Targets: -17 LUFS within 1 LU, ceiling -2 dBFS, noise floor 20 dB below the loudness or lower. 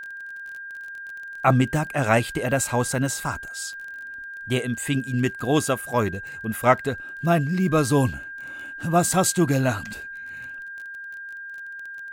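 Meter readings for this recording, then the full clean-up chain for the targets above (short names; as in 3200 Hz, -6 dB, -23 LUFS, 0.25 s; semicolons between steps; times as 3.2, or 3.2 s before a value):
ticks 24/s; steady tone 1600 Hz; tone level -34 dBFS; loudness -23.5 LUFS; peak -4.5 dBFS; loudness target -17.0 LUFS
-> de-click; notch 1600 Hz, Q 30; gain +6.5 dB; limiter -2 dBFS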